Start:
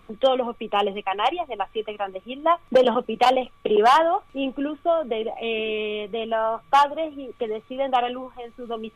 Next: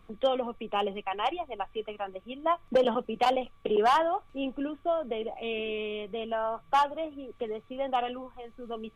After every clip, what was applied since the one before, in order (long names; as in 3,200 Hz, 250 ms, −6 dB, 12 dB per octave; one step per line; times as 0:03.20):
low-shelf EQ 160 Hz +6 dB
level −7.5 dB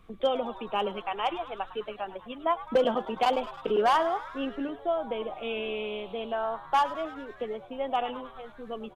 echo with shifted repeats 104 ms, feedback 65%, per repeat +140 Hz, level −16 dB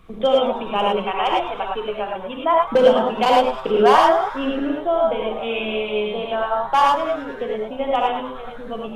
reverb whose tail is shaped and stops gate 130 ms rising, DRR −1.5 dB
level +6.5 dB